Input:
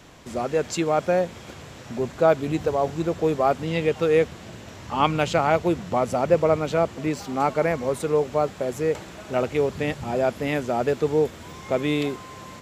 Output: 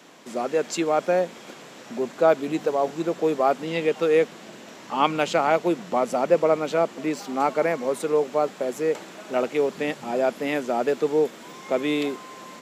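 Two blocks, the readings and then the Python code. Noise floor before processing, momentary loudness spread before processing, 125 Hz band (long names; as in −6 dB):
−42 dBFS, 11 LU, −9.5 dB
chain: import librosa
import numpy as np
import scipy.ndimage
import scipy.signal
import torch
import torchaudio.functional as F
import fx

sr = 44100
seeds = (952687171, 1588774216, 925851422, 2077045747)

y = scipy.signal.sosfilt(scipy.signal.butter(4, 200.0, 'highpass', fs=sr, output='sos'), x)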